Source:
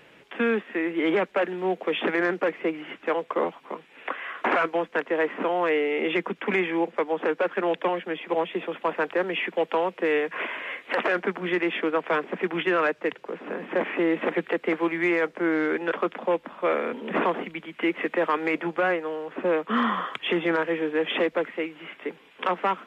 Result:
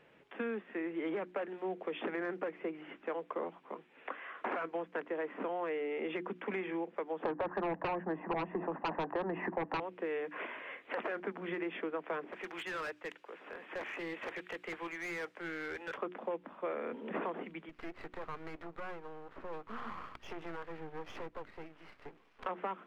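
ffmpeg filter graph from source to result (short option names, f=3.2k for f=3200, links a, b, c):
-filter_complex "[0:a]asettb=1/sr,asplit=3[a][b][c];[a]atrim=end=7.254[d];[b]atrim=start=7.25:end=9.8,asetpts=PTS-STARTPTS,afade=t=in:d=0.004:c=qsin,afade=t=out:st=2.546:d=0.004:c=qsin,lowpass=f=1.4k:w=0.5412,lowpass=f=1.4k:w=1.3066,aecho=1:1:1.1:0.52,atrim=end_sample=112455,aeval=exprs='0.266*sin(PI/2*3.55*val(0)/0.266)':c=same[e];[c]atrim=start=9.796[f];[d][e]acrossfade=d=0.004:c1=hsin:c2=qsin[g];[g][f]acrossfade=d=0.004:c1=qsin:c2=hsin,asettb=1/sr,asplit=3[h][i][j];[h]atrim=end=12.324[k];[i]atrim=start=12.32:end=15.98,asetpts=PTS-STARTPTS,afade=t=in:d=0.004:c=qsin,afade=t=out:st=3.656:d=0.004:c=qsin,highpass=f=1k:p=1,highshelf=f=2.1k:g=8.5,asoftclip=type=hard:threshold=-25.5dB[l];[j]atrim=start=15.976[m];[k][l]acrossfade=d=0.004:c1=hsin:c2=qsin[n];[n][m]acrossfade=d=0.004:c1=qsin:c2=hsin,asettb=1/sr,asplit=3[o][p][q];[o]atrim=end=17.694[r];[p]atrim=start=17.69:end=22.46,asetpts=PTS-STARTPTS,afade=t=in:d=0.004:c=qsin,afade=t=out:st=4.766:d=0.004:c=qsin,acompressor=threshold=-39dB:ratio=1.5:attack=3.2:release=140:knee=1:detection=peak,aeval=exprs='max(val(0),0)':c=same,equalizer=f=1.2k:t=o:w=0.88:g=4.5[s];[q]atrim=start=22.456[t];[r][s]acrossfade=d=0.004:c1=hsin:c2=qsin[u];[u][t]acrossfade=d=0.004:c1=qsin:c2=hsin,highshelf=f=2.6k:g=-10.5,bandreject=f=60:t=h:w=6,bandreject=f=120:t=h:w=6,bandreject=f=180:t=h:w=6,bandreject=f=240:t=h:w=6,bandreject=f=300:t=h:w=6,bandreject=f=360:t=h:w=6,acompressor=threshold=-25dB:ratio=6,volume=-8.5dB"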